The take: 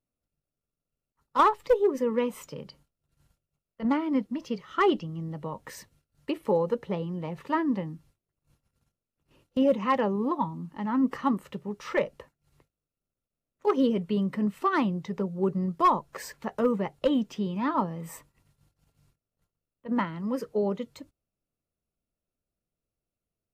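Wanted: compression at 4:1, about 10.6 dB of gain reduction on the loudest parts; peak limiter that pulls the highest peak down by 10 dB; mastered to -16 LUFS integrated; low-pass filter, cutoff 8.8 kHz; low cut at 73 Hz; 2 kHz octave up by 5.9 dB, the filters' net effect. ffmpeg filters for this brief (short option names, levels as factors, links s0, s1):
-af "highpass=73,lowpass=8800,equalizer=f=2000:t=o:g=7,acompressor=threshold=0.0398:ratio=4,volume=9.44,alimiter=limit=0.501:level=0:latency=1"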